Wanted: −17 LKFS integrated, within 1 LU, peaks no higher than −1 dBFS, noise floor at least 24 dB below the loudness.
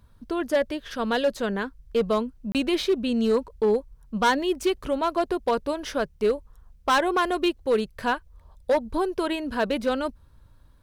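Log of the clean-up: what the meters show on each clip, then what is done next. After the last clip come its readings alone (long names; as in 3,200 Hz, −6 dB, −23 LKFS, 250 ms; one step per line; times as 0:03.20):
share of clipped samples 1.2%; peaks flattened at −16.0 dBFS; number of dropouts 1; longest dropout 28 ms; integrated loudness −26.0 LKFS; sample peak −16.0 dBFS; target loudness −17.0 LKFS
→ clipped peaks rebuilt −16 dBFS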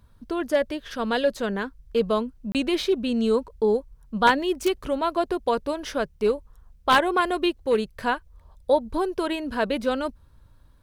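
share of clipped samples 0.0%; number of dropouts 1; longest dropout 28 ms
→ repair the gap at 0:02.52, 28 ms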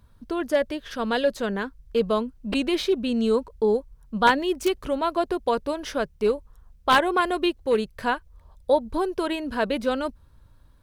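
number of dropouts 0; integrated loudness −25.0 LKFS; sample peak −7.0 dBFS; target loudness −17.0 LKFS
→ level +8 dB
brickwall limiter −1 dBFS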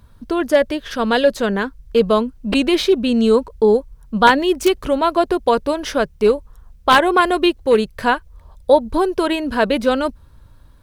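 integrated loudness −17.5 LKFS; sample peak −1.0 dBFS; background noise floor −47 dBFS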